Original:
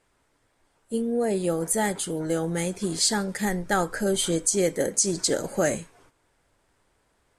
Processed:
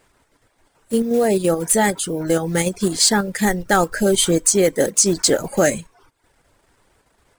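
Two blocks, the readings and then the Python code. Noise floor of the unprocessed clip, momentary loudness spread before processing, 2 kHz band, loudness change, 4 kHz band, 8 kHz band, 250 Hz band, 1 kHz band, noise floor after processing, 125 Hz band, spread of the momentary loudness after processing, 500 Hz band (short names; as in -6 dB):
-69 dBFS, 6 LU, +8.0 dB, +7.5 dB, +7.5 dB, +7.5 dB, +7.5 dB, +8.0 dB, -65 dBFS, +6.5 dB, 6 LU, +7.5 dB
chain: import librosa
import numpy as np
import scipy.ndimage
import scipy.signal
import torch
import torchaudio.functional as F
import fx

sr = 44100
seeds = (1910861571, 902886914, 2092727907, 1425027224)

p1 = fx.block_float(x, sr, bits=5)
p2 = fx.dereverb_blind(p1, sr, rt60_s=0.52)
p3 = fx.level_steps(p2, sr, step_db=14)
p4 = p2 + (p3 * 10.0 ** (1.0 / 20.0))
y = p4 * 10.0 ** (4.0 / 20.0)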